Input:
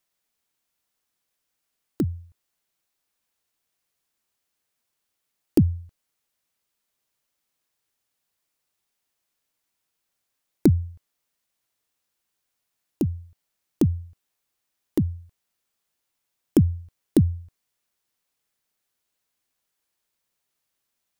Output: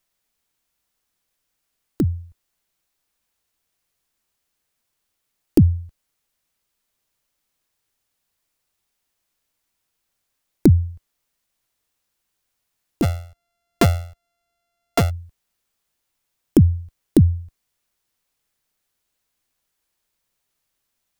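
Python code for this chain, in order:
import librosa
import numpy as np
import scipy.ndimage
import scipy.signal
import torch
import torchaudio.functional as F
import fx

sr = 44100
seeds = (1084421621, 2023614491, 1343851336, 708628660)

y = fx.sample_sort(x, sr, block=64, at=(13.02, 15.09), fade=0.02)
y = fx.low_shelf(y, sr, hz=67.0, db=10.5)
y = y * 10.0 ** (3.0 / 20.0)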